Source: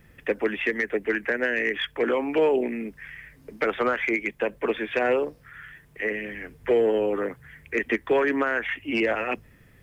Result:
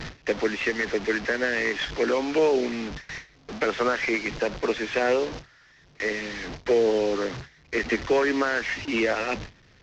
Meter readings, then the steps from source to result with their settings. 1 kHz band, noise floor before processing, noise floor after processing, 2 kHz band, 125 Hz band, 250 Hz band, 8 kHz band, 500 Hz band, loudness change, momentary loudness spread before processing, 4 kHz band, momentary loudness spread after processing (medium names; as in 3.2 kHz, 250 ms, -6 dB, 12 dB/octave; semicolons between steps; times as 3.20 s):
+0.5 dB, -55 dBFS, -56 dBFS, 0.0 dB, +4.5 dB, 0.0 dB, no reading, 0.0 dB, 0.0 dB, 14 LU, +3.5 dB, 11 LU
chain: one-bit delta coder 32 kbps, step -29 dBFS; gate with hold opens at -29 dBFS